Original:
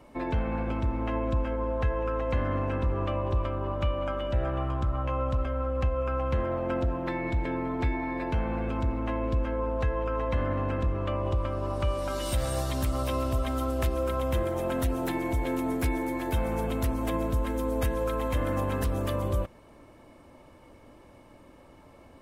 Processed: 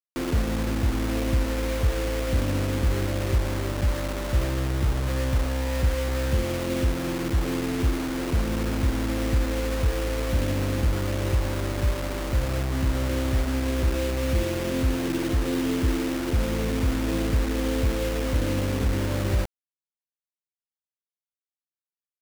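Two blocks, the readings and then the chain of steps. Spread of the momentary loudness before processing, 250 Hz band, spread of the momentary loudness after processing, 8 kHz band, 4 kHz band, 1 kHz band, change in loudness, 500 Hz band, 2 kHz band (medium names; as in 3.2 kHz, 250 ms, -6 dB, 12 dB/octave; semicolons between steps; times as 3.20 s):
2 LU, +4.5 dB, 2 LU, +8.0 dB, +8.5 dB, -3.0 dB, +3.5 dB, +0.5 dB, +5.0 dB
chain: inverse Chebyshev low-pass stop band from 2.2 kHz, stop band 70 dB; bit crusher 6-bit; trim +4.5 dB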